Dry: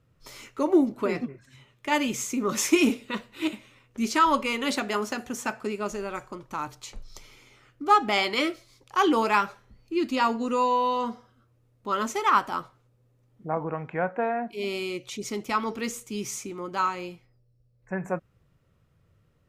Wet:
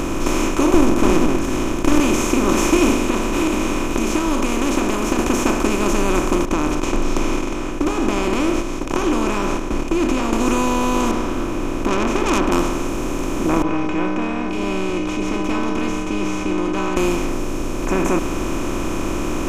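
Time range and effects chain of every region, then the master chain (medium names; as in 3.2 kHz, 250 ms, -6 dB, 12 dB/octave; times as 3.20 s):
0.74–2.00 s: comb filter that takes the minimum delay 0.58 ms + tilt shelf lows +7.5 dB, about 710 Hz
3.06–5.19 s: compression 3:1, threshold -43 dBFS + delay 560 ms -20.5 dB
6.45–10.33 s: compression 2.5:1, threshold -38 dBFS + tape spacing loss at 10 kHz 26 dB + gate -57 dBFS, range -18 dB
11.11–12.52 s: distance through air 390 m + low-pass that closes with the level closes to 2.2 kHz, closed at -24.5 dBFS + transformer saturation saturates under 2.9 kHz
13.62–16.97 s: low-pass 3 kHz 24 dB/octave + inharmonic resonator 91 Hz, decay 0.8 s, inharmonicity 0.03
whole clip: spectral levelling over time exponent 0.2; bass shelf 90 Hz +9.5 dB; trim -3 dB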